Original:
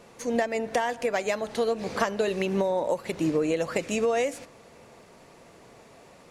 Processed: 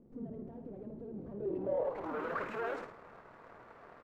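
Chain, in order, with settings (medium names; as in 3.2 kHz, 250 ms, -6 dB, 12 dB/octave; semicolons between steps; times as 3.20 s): treble shelf 3.8 kHz +7.5 dB; valve stage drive 39 dB, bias 0.8; careless resampling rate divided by 3×, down none, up zero stuff; tone controls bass -14 dB, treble 0 dB; crossover distortion -53 dBFS; low-pass sweep 260 Hz -> 1.4 kHz, 1.97–3.42 s; on a send: frequency-shifting echo 87 ms, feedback 37%, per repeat -66 Hz, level -7 dB; on the sum: granular stretch 0.64×, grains 53 ms; trim +4 dB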